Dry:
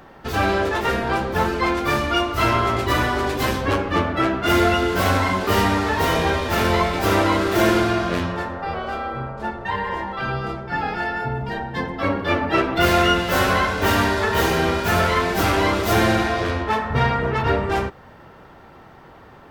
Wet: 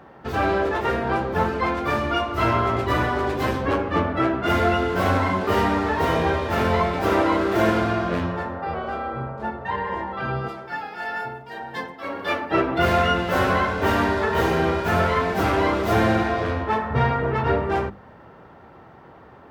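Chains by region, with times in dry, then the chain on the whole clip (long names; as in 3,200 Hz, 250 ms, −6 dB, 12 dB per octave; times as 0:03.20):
0:10.48–0:12.51: RIAA equalisation recording + shaped tremolo triangle 1.8 Hz, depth 65%
whole clip: high-pass filter 62 Hz; high-shelf EQ 2,800 Hz −12 dB; mains-hum notches 50/100/150/200/250/300/350 Hz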